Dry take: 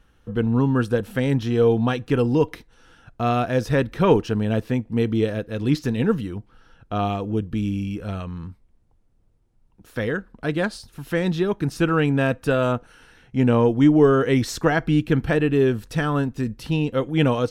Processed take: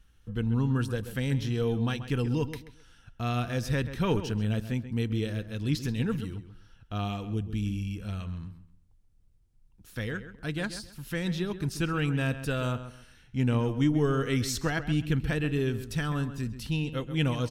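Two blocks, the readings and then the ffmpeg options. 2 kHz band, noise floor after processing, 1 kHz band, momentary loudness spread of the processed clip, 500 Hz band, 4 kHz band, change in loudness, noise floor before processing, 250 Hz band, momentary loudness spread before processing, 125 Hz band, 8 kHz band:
-7.0 dB, -60 dBFS, -11.0 dB, 9 LU, -12.5 dB, -3.5 dB, -8.5 dB, -60 dBFS, -9.0 dB, 11 LU, -5.0 dB, -1.0 dB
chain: -filter_complex "[0:a]equalizer=f=580:w=0.32:g=-13.5,asplit=2[s0][s1];[s1]adelay=133,lowpass=f=3300:p=1,volume=0.266,asplit=2[s2][s3];[s3]adelay=133,lowpass=f=3300:p=1,volume=0.27,asplit=2[s4][s5];[s5]adelay=133,lowpass=f=3300:p=1,volume=0.27[s6];[s2][s4][s6]amix=inputs=3:normalize=0[s7];[s0][s7]amix=inputs=2:normalize=0"

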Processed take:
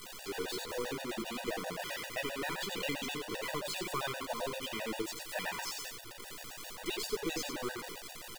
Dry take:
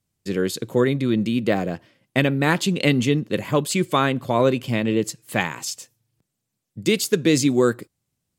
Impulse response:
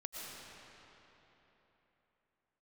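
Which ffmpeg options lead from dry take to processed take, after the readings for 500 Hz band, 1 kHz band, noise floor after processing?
-17.0 dB, -13.0 dB, -48 dBFS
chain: -filter_complex "[0:a]aeval=exprs='val(0)+0.5*0.106*sgn(val(0))':c=same,acrossover=split=350 4600:gain=0.0891 1 0.251[s0][s1][s2];[s0][s1][s2]amix=inputs=3:normalize=0,bandreject=f=2200:w=15,bandreject=f=52.09:t=h:w=4,bandreject=f=104.18:t=h:w=4,bandreject=f=156.27:t=h:w=4,bandreject=f=208.36:t=h:w=4,bandreject=f=260.45:t=h:w=4,bandreject=f=312.54:t=h:w=4,bandreject=f=364.63:t=h:w=4,bandreject=f=416.72:t=h:w=4,bandreject=f=468.81:t=h:w=4,bandreject=f=520.9:t=h:w=4,bandreject=f=572.99:t=h:w=4,bandreject=f=625.08:t=h:w=4,bandreject=f=677.17:t=h:w=4,bandreject=f=729.26:t=h:w=4,bandreject=f=781.35:t=h:w=4,bandreject=f=833.44:t=h:w=4,bandreject=f=885.53:t=h:w=4,bandreject=f=937.62:t=h:w=4,bandreject=f=989.71:t=h:w=4,bandreject=f=1041.8:t=h:w=4,bandreject=f=1093.89:t=h:w=4,bandreject=f=1145.98:t=h:w=4,bandreject=f=1198.07:t=h:w=4,bandreject=f=1250.16:t=h:w=4,bandreject=f=1302.25:t=h:w=4,bandreject=f=1354.34:t=h:w=4,bandreject=f=1406.43:t=h:w=4,bandreject=f=1458.52:t=h:w=4,bandreject=f=1510.61:t=h:w=4,bandreject=f=1562.7:t=h:w=4,bandreject=f=1614.79:t=h:w=4,bandreject=f=1666.88:t=h:w=4,bandreject=f=1718.97:t=h:w=4,bandreject=f=1771.06:t=h:w=4,bandreject=f=1823.15:t=h:w=4,bandreject=f=1875.24:t=h:w=4,bandreject=f=1927.33:t=h:w=4,acrossover=split=220|3000[s3][s4][s5];[s4]acompressor=threshold=0.0631:ratio=4[s6];[s3][s6][s5]amix=inputs=3:normalize=0,aeval=exprs='(tanh(6.31*val(0)+0.6)-tanh(0.6))/6.31':c=same,acrusher=bits=6:dc=4:mix=0:aa=0.000001,flanger=delay=5.5:depth=9.4:regen=-37:speed=0.54:shape=sinusoidal,aecho=1:1:90:0.531,afftfilt=real='re*gt(sin(2*PI*7.6*pts/sr)*(1-2*mod(floor(b*sr/1024/490),2)),0)':imag='im*gt(sin(2*PI*7.6*pts/sr)*(1-2*mod(floor(b*sr/1024/490),2)),0)':win_size=1024:overlap=0.75,volume=0.708"

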